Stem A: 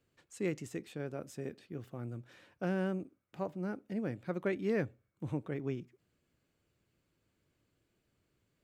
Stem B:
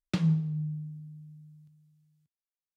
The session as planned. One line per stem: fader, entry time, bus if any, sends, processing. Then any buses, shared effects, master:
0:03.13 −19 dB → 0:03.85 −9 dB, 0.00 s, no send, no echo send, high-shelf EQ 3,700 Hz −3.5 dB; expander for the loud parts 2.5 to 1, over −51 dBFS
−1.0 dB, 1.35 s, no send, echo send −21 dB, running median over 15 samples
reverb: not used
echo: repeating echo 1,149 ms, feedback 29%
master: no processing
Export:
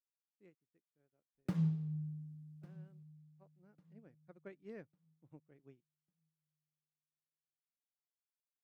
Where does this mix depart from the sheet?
stem A −19.0 dB → −26.5 dB
stem B −1.0 dB → −8.0 dB

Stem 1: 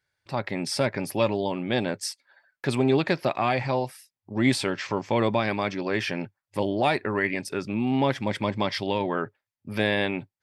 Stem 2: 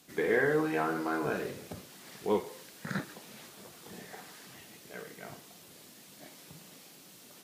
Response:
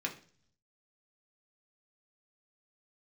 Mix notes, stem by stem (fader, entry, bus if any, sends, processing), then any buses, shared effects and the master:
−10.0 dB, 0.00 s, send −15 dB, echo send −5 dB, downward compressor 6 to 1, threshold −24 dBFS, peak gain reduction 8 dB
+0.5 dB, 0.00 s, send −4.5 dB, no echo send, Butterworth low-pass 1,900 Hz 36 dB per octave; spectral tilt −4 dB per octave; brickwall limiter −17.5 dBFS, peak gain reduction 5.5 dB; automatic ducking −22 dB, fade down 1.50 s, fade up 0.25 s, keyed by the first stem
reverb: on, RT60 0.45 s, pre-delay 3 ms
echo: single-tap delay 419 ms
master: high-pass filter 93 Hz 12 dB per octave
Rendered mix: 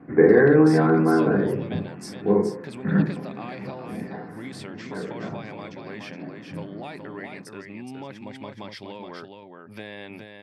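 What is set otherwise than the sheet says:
stem 1: send −15 dB → −23 dB
stem 2 +0.5 dB → +10.0 dB

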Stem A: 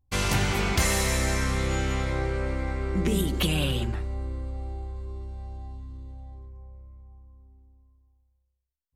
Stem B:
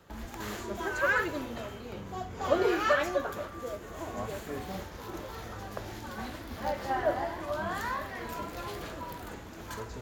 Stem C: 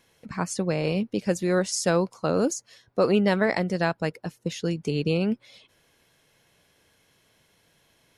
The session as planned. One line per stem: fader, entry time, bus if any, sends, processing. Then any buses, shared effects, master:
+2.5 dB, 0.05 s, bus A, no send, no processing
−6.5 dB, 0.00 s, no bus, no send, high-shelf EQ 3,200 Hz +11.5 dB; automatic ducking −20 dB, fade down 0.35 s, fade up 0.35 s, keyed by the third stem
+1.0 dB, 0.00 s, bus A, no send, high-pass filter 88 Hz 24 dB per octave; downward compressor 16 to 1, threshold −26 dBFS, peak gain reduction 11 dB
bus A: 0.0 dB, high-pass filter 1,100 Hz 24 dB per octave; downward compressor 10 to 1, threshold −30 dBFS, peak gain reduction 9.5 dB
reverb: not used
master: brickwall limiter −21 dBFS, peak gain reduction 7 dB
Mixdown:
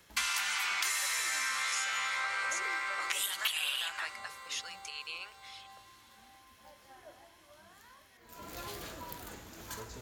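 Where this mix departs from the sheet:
stem A +2.5 dB → +9.0 dB
master: missing brickwall limiter −21 dBFS, peak gain reduction 7 dB

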